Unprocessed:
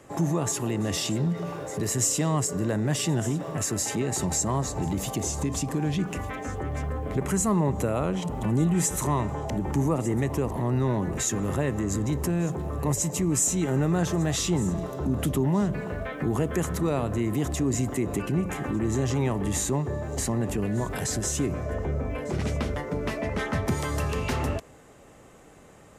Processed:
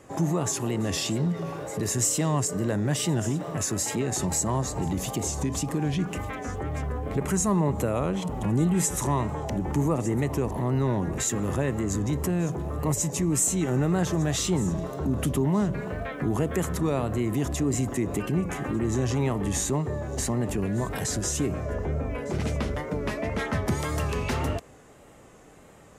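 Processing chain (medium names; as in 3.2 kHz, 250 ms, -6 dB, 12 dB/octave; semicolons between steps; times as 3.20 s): wow and flutter 68 cents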